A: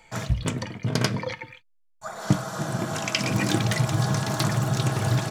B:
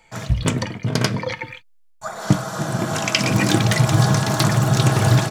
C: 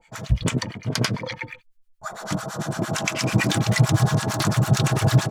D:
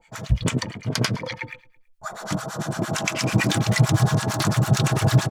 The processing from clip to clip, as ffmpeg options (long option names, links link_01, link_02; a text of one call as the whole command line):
ffmpeg -i in.wav -af "dynaudnorm=framelen=210:gausssize=3:maxgain=12dB,volume=-1dB" out.wav
ffmpeg -i in.wav -filter_complex "[0:a]acrossover=split=850[link_01][link_02];[link_01]aeval=exprs='val(0)*(1-1/2+1/2*cos(2*PI*8.9*n/s))':channel_layout=same[link_03];[link_02]aeval=exprs='val(0)*(1-1/2-1/2*cos(2*PI*8.9*n/s))':channel_layout=same[link_04];[link_03][link_04]amix=inputs=2:normalize=0,volume=1dB" out.wav
ffmpeg -i in.wav -af "aecho=1:1:109|218|327:0.0708|0.034|0.0163" out.wav